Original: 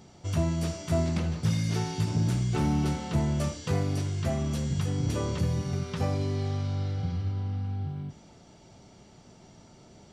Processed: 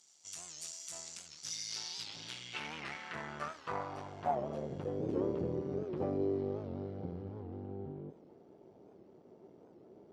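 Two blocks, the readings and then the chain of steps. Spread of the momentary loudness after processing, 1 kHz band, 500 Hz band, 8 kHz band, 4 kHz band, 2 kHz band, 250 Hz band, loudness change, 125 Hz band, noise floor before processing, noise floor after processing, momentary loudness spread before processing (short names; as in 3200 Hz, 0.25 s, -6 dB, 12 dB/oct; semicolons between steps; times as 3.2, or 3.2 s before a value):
24 LU, -3.5 dB, -3.0 dB, -3.0 dB, -3.5 dB, -4.5 dB, -10.5 dB, -10.5 dB, -19.0 dB, -54 dBFS, -61 dBFS, 5 LU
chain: half-wave gain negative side -12 dB; band-pass sweep 7200 Hz -> 400 Hz, 1.26–5.1; record warp 78 rpm, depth 160 cents; gain +6.5 dB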